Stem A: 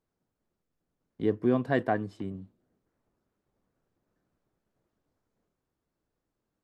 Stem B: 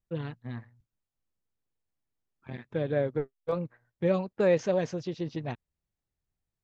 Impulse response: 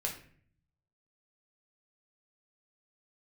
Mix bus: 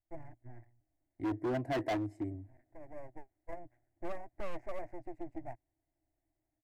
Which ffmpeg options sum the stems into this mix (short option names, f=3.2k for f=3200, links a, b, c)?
-filter_complex "[0:a]adynamicequalizer=threshold=0.0178:dfrequency=420:dqfactor=0.97:tfrequency=420:tqfactor=0.97:attack=5:release=100:ratio=0.375:range=2.5:mode=boostabove:tftype=bell,dynaudnorm=f=160:g=3:m=10dB,volume=-9.5dB,asplit=2[a][b];[1:a]lowpass=1.3k,lowshelf=f=310:g=-4.5,aeval=exprs='max(val(0),0)':c=same,volume=0dB[c];[b]apad=whole_len=292478[d];[c][d]sidechaincompress=threshold=-41dB:ratio=3:attack=16:release=1360[e];[a][e]amix=inputs=2:normalize=0,firequalizer=gain_entry='entry(120,0);entry(190,-23);entry(310,4);entry(450,-19);entry(660,4);entry(1200,-20);entry(2000,1);entry(3200,-27);entry(4800,-15);entry(7700,-4)':delay=0.05:min_phase=1,asoftclip=type=hard:threshold=-30.5dB"